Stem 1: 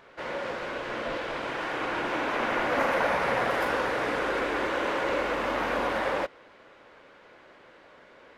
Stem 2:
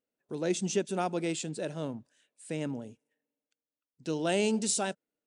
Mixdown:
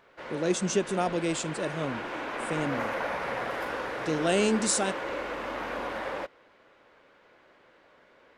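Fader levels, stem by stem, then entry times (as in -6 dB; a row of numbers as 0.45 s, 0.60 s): -6.0 dB, +3.0 dB; 0.00 s, 0.00 s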